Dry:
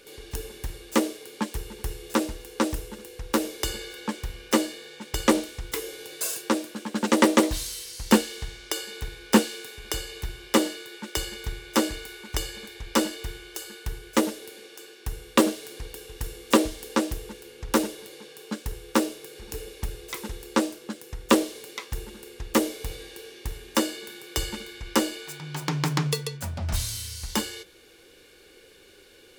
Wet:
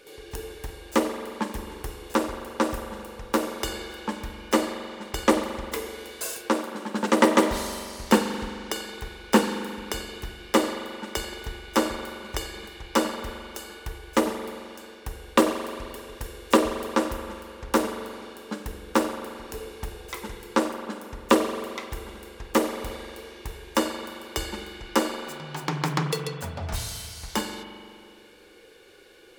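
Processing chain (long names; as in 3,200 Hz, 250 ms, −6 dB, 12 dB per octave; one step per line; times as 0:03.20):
parametric band 820 Hz +6.5 dB 3 octaves
convolution reverb RT60 2.2 s, pre-delay 43 ms, DRR 6.5 dB
level −4 dB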